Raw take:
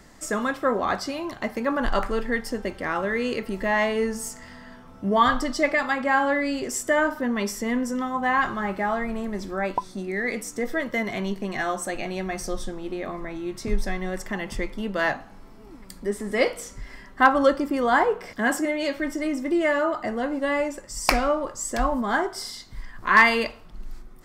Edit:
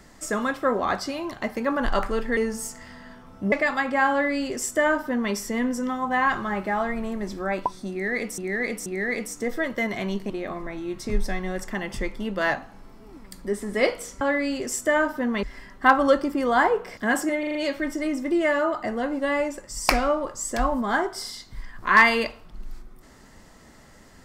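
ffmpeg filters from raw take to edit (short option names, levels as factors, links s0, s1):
-filter_complex "[0:a]asplit=12[s0][s1][s2][s3][s4][s5][s6][s7][s8][s9][s10][s11];[s0]atrim=end=2.372[s12];[s1]atrim=start=3.978:end=5.132[s13];[s2]atrim=start=5.638:end=10.502[s14];[s3]atrim=start=10.018:end=10.502[s15];[s4]atrim=start=10.018:end=11.462[s16];[s5]atrim=start=12.878:end=16.792[s17];[s6]atrim=start=6.228:end=7.452[s18];[s7]atrim=start=16.788:end=18.792[s19];[s8]atrim=start=18.748:end=18.792[s20];[s9]atrim=start=18.748:end=18.792[s21];[s10]atrim=start=18.748:end=18.792[s22];[s11]atrim=start=18.748[s23];[s12][s13]acrossfade=d=0.004:c1=hsin:c2=hsin[s24];[s24][s14]acrossfade=d=0.004:c1=hsin:c2=hsin[s25];[s25][s15]acrossfade=d=0.004:c1=hsin:c2=hsin[s26];[s26][s16]acrossfade=d=0.004:c1=hsin:c2=hsin[s27];[s27][s17]acrossfade=d=0.004:c1=hsin:c2=hsin[s28];[s28][s18]acrossfade=d=0.004:c1=hsin:c2=hsin[s29];[s29][s19]acrossfade=d=0.004:c1=hsin:c2=hsin[s30];[s30][s20]acrossfade=d=0.004:c1=hsin:c2=hsin[s31];[s31][s21]acrossfade=d=0.004:c1=hsin:c2=hsin[s32];[s32][s22]acrossfade=d=0.004:c1=hsin:c2=hsin[s33];[s33][s23]acrossfade=d=0.004:c1=hsin:c2=hsin"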